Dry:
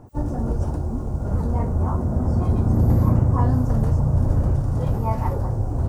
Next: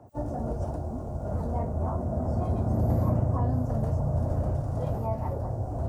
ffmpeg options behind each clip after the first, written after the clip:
ffmpeg -i in.wav -filter_complex "[0:a]highpass=52,equalizer=frequency=650:width_type=o:width=0.48:gain=11.5,acrossover=split=130|490[link_01][link_02][link_03];[link_03]alimiter=limit=-19.5dB:level=0:latency=1:release=470[link_04];[link_01][link_02][link_04]amix=inputs=3:normalize=0,volume=-7.5dB" out.wav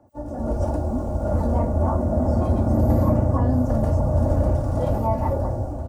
ffmpeg -i in.wav -af "aecho=1:1:3.5:0.51,dynaudnorm=framelen=120:gausssize=7:maxgain=13dB,volume=-4.5dB" out.wav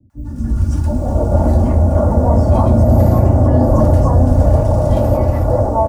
ffmpeg -i in.wav -filter_complex "[0:a]acrossover=split=260|1400[link_01][link_02][link_03];[link_03]adelay=100[link_04];[link_02]adelay=710[link_05];[link_01][link_05][link_04]amix=inputs=3:normalize=0,alimiter=level_in=11dB:limit=-1dB:release=50:level=0:latency=1,volume=-1dB" out.wav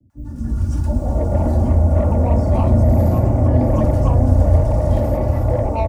ffmpeg -i in.wav -filter_complex "[0:a]acrossover=split=130|560[link_01][link_02][link_03];[link_01]aecho=1:1:357:0.708[link_04];[link_03]asoftclip=type=tanh:threshold=-17.5dB[link_05];[link_04][link_02][link_05]amix=inputs=3:normalize=0,volume=-4dB" out.wav

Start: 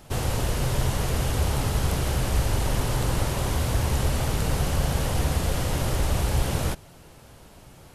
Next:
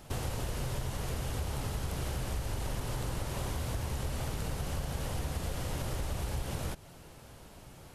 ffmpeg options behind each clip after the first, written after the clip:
ffmpeg -i in.wav -af "acompressor=threshold=-29dB:ratio=5,volume=-3dB" out.wav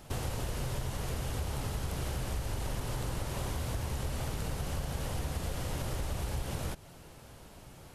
ffmpeg -i in.wav -af anull out.wav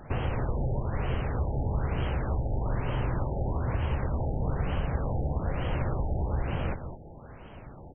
ffmpeg -i in.wav -af "aecho=1:1:206:0.355,afftfilt=real='re*lt(b*sr/1024,860*pow(3300/860,0.5+0.5*sin(2*PI*1.1*pts/sr)))':imag='im*lt(b*sr/1024,860*pow(3300/860,0.5+0.5*sin(2*PI*1.1*pts/sr)))':win_size=1024:overlap=0.75,volume=6dB" out.wav

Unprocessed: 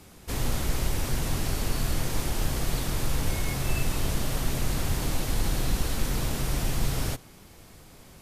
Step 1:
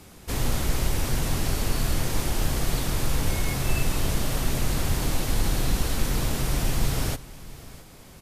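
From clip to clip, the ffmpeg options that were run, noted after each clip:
ffmpeg -i in.wav -af "aecho=1:1:661:0.106,volume=2.5dB" out.wav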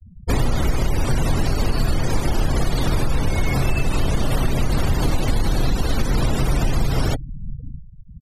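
ffmpeg -i in.wav -filter_complex "[0:a]afftfilt=real='re*gte(hypot(re,im),0.0251)':imag='im*gte(hypot(re,im),0.0251)':win_size=1024:overlap=0.75,asplit=2[link_01][link_02];[link_02]alimiter=limit=-19.5dB:level=0:latency=1,volume=-1dB[link_03];[link_01][link_03]amix=inputs=2:normalize=0,acompressor=threshold=-21dB:ratio=6,volume=7dB" out.wav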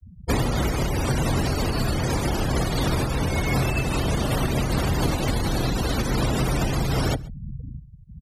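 ffmpeg -i in.wav -filter_complex "[0:a]highpass=46,acrossover=split=150|600|2300[link_01][link_02][link_03][link_04];[link_01]asoftclip=type=tanh:threshold=-20dB[link_05];[link_05][link_02][link_03][link_04]amix=inputs=4:normalize=0,aecho=1:1:134:0.0668" out.wav

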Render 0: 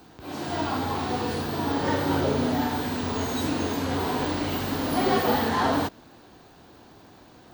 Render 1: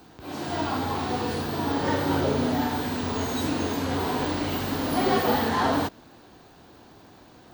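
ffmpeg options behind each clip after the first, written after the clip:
ffmpeg -i in.wav -af anull out.wav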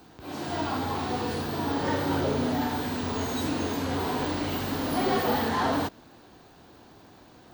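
ffmpeg -i in.wav -af "asoftclip=type=tanh:threshold=-14.5dB,volume=-1.5dB" out.wav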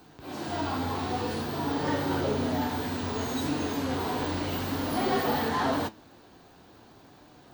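ffmpeg -i in.wav -af "flanger=delay=6.7:depth=4.9:regen=71:speed=0.55:shape=sinusoidal,volume=3dB" out.wav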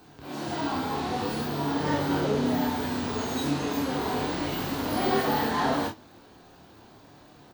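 ffmpeg -i in.wav -af "aecho=1:1:28|49:0.596|0.355" out.wav

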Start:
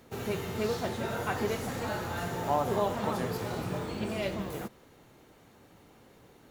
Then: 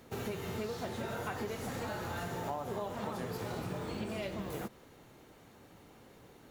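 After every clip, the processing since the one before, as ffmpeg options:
ffmpeg -i in.wav -af "acompressor=threshold=-35dB:ratio=6" out.wav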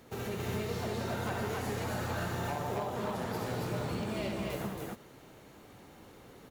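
ffmpeg -i in.wav -af "aeval=exprs='0.0299*(abs(mod(val(0)/0.0299+3,4)-2)-1)':channel_layout=same,aecho=1:1:67.06|183.7|274.1:0.562|0.316|0.891" out.wav

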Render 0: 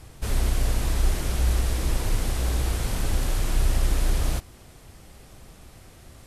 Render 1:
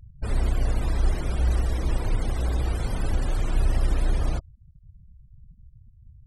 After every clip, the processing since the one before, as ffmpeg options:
ffmpeg -i in.wav -af "afftfilt=real='re*gte(hypot(re,im),0.02)':imag='im*gte(hypot(re,im),0.02)':win_size=1024:overlap=0.75" out.wav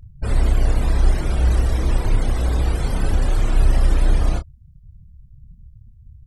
ffmpeg -i in.wav -filter_complex "[0:a]asplit=2[link_01][link_02];[link_02]adelay=29,volume=-7.5dB[link_03];[link_01][link_03]amix=inputs=2:normalize=0,volume=5dB" out.wav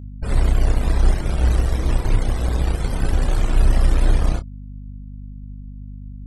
ffmpeg -i in.wav -af "aeval=exprs='0.631*(cos(1*acos(clip(val(0)/0.631,-1,1)))-cos(1*PI/2))+0.0316*(cos(7*acos(clip(val(0)/0.631,-1,1)))-cos(7*PI/2))':channel_layout=same,aeval=exprs='val(0)+0.0224*(sin(2*PI*50*n/s)+sin(2*PI*2*50*n/s)/2+sin(2*PI*3*50*n/s)/3+sin(2*PI*4*50*n/s)/4+sin(2*PI*5*50*n/s)/5)':channel_layout=same" out.wav

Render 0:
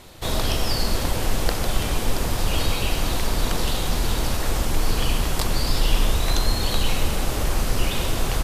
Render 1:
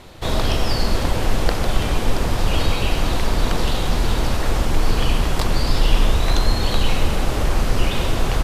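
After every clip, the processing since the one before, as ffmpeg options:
ffmpeg -i in.wav -af "lowpass=frequency=3600:poles=1,volume=4dB" out.wav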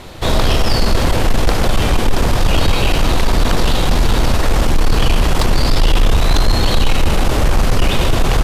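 ffmpeg -i in.wav -af "asoftclip=type=tanh:threshold=-13dB,volume=8dB" out.wav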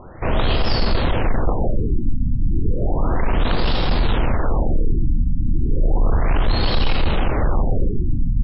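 ffmpeg -i in.wav -af "afftfilt=real='re*lt(b*sr/1024,290*pow(5600/290,0.5+0.5*sin(2*PI*0.33*pts/sr)))':imag='im*lt(b*sr/1024,290*pow(5600/290,0.5+0.5*sin(2*PI*0.33*pts/sr)))':win_size=1024:overlap=0.75,volume=-4.5dB" out.wav

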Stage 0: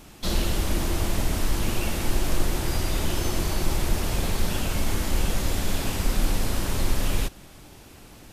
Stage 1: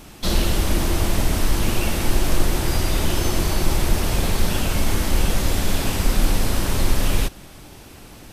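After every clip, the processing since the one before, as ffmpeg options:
ffmpeg -i in.wav -af "bandreject=frequency=7000:width=28,volume=5dB" out.wav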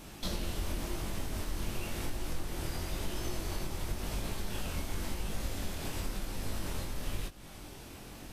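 ffmpeg -i in.wav -af "acompressor=threshold=-29dB:ratio=3,flanger=delay=19:depth=5.3:speed=0.94,volume=-2.5dB" out.wav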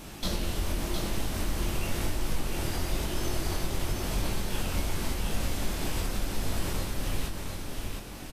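ffmpeg -i in.wav -af "aecho=1:1:711:0.562,volume=5dB" out.wav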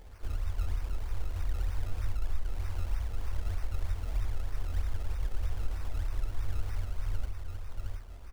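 ffmpeg -i in.wav -af "afftfilt=real='re*(1-between(b*sr/4096,100,12000))':imag='im*(1-between(b*sr/4096,100,12000))':win_size=4096:overlap=0.75,acrusher=samples=23:mix=1:aa=0.000001:lfo=1:lforange=23:lforate=3.2,bandreject=frequency=68.03:width_type=h:width=4,bandreject=frequency=136.06:width_type=h:width=4,bandreject=frequency=204.09:width_type=h:width=4,bandreject=frequency=272.12:width_type=h:width=4,bandreject=frequency=340.15:width_type=h:width=4,bandreject=frequency=408.18:width_type=h:width=4,bandreject=frequency=476.21:width_type=h:width=4,bandreject=frequency=544.24:width_type=h:width=4,bandreject=frequency=612.27:width_type=h:width=4,bandreject=frequency=680.3:width_type=h:width=4,bandreject=frequency=748.33:width_type=h:width=4,bandreject=frequency=816.36:width_type=h:width=4,bandreject=frequency=884.39:width_type=h:width=4,bandreject=frequency=952.42:width_type=h:width=4,bandreject=frequency=1020.45:width_type=h:width=4,bandreject=frequency=1088.48:width_type=h:width=4,bandreject=frequency=1156.51:width_type=h:width=4,bandreject=frequency=1224.54:width_type=h:width=4,bandreject=frequency=1292.57:width_type=h:width=4,bandreject=frequency=1360.6:width_type=h:width=4,bandreject=frequency=1428.63:width_type=h:width=4,bandreject=frequency=1496.66:width_type=h:width=4,bandreject=frequency=1564.69:width_type=h:width=4,bandreject=frequency=1632.72:width_type=h:width=4,bandreject=frequency=1700.75:width_type=h:width=4,bandreject=frequency=1768.78:width_type=h:width=4,bandreject=frequency=1836.81:width_type=h:width=4,bandreject=frequency=1904.84:width_type=h:width=4,bandreject=frequency=1972.87:width_type=h:width=4,bandreject=frequency=2040.9:width_type=h:width=4,bandreject=frequency=2108.93:width_type=h:width=4,bandreject=frequency=2176.96:width_type=h:width=4,bandreject=frequency=2244.99:width_type=h:width=4,bandreject=frequency=2313.02:width_type=h:width=4" out.wav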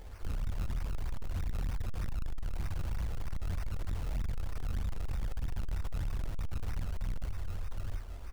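ffmpeg -i in.wav -af "asoftclip=type=hard:threshold=-33dB,volume=3dB" out.wav

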